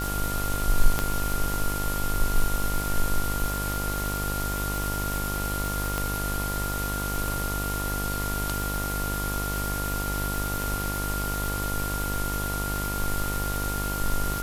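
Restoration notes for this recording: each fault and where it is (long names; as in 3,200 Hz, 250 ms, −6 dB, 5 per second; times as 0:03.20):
mains buzz 50 Hz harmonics 26 −31 dBFS
surface crackle 420 per second −30 dBFS
whistle 1,400 Hz −32 dBFS
0:00.99: click −9 dBFS
0:05.98: click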